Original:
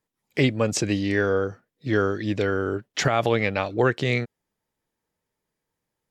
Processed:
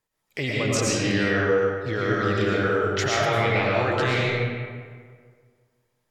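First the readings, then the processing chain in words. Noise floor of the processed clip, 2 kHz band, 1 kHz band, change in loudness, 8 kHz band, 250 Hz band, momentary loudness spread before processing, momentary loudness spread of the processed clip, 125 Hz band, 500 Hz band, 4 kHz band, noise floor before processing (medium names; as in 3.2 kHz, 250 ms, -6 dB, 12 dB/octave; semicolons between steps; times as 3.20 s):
-76 dBFS, +3.0 dB, +2.5 dB, +1.0 dB, +2.5 dB, -1.0 dB, 6 LU, 8 LU, +1.0 dB, +1.0 dB, +3.0 dB, -83 dBFS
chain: peaking EQ 250 Hz -7 dB 1.8 oct; in parallel at +3 dB: compressor with a negative ratio -29 dBFS; on the sum: algorithmic reverb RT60 1.8 s, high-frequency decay 0.6×, pre-delay 70 ms, DRR -5.5 dB; trim -8 dB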